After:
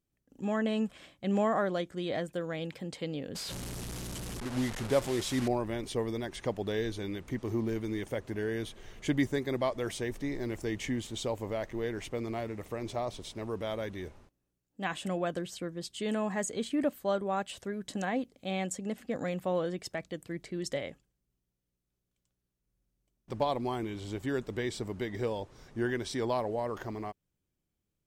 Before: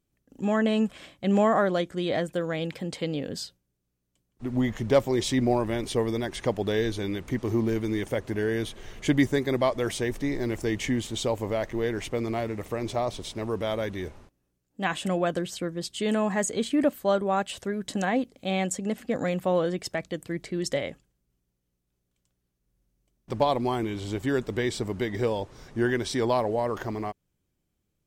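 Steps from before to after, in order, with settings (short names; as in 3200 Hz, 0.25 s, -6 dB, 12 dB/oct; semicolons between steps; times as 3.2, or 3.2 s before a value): 3.35–5.48 delta modulation 64 kbps, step -26.5 dBFS; gain -6.5 dB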